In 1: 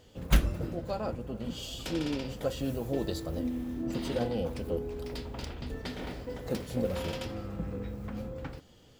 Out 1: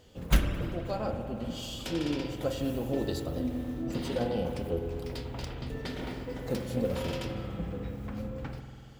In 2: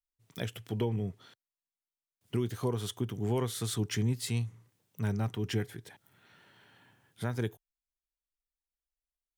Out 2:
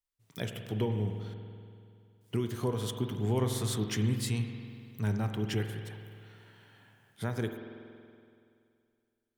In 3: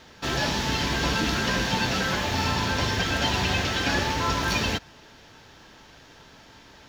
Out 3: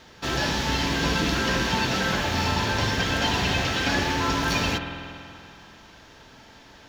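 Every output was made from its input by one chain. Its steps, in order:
spring reverb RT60 2.4 s, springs 47 ms, chirp 80 ms, DRR 5.5 dB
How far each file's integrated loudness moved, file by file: +1.0, +0.5, +1.0 LU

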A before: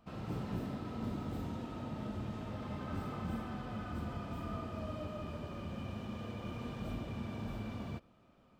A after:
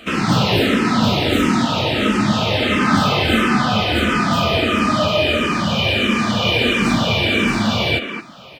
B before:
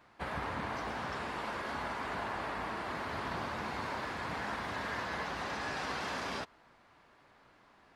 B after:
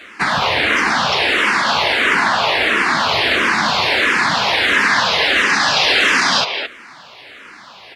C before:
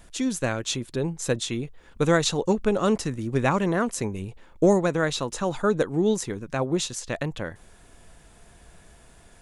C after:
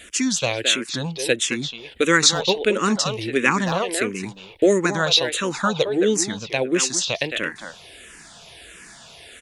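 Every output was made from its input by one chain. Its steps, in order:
meter weighting curve D
in parallel at 0 dB: downward compressor, threshold −33 dBFS
on the sum: far-end echo of a speakerphone 220 ms, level −6 dB
frequency shifter mixed with the dry sound −1.5 Hz
normalise the peak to −1.5 dBFS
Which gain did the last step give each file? +22.0, +16.5, +3.0 decibels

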